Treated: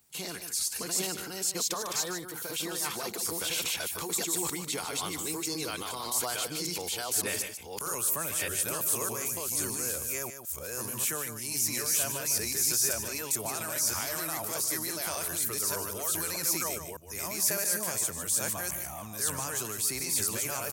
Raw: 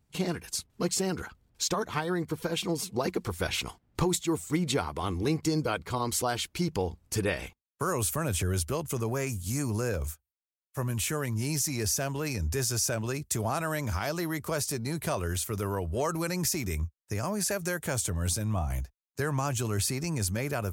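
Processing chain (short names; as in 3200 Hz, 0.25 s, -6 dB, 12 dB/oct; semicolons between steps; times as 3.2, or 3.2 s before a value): reverse delay 0.606 s, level 0 dB; RIAA curve recording; transient shaper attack -6 dB, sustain +5 dB; echo 0.15 s -10.5 dB; three-band squash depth 40%; gain -8 dB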